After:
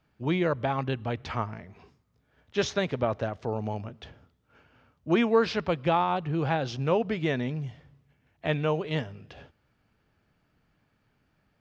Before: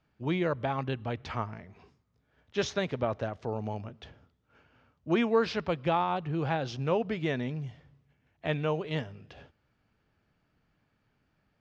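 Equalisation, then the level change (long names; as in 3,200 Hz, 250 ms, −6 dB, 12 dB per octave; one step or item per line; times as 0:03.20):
no EQ move
+3.0 dB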